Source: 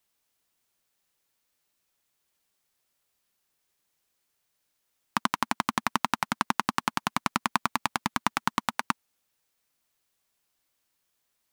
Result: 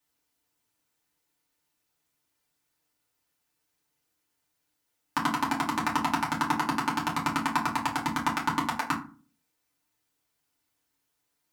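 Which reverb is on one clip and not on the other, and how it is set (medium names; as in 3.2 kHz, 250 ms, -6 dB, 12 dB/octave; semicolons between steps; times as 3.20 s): FDN reverb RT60 0.37 s, low-frequency decay 1.5×, high-frequency decay 0.6×, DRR -5.5 dB; trim -6.5 dB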